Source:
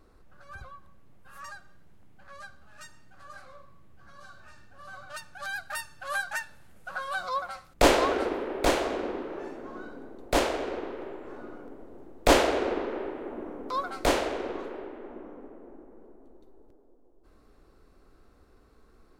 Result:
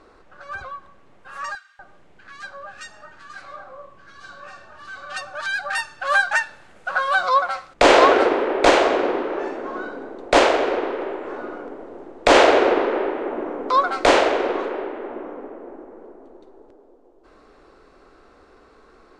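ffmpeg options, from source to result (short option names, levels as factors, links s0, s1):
-filter_complex "[0:a]asettb=1/sr,asplit=3[s0][s1][s2];[s0]atrim=end=1.554[s3];[s1]atrim=start=1.55:end=5.78,asetpts=PTS-STARTPTS,afade=t=in:d=0.004:c=qsin,afade=t=out:st=4.226:d=0.004:c=qsin,acrossover=split=1300[s4][s5];[s4]adelay=240[s6];[s6][s5]amix=inputs=2:normalize=0,atrim=end_sample=186543[s7];[s2]atrim=start=5.776[s8];[s3][s7]acrossfade=d=0.004:c1=hsin:c2=qsin[s9];[s9][s8]acrossfade=d=0.004:c1=qsin:c2=hsin,lowpass=f=8300:w=0.5412,lowpass=f=8300:w=1.3066,bass=f=250:g=-14,treble=f=4000:g=-6,alimiter=level_in=5.31:limit=0.891:release=50:level=0:latency=1,volume=0.891"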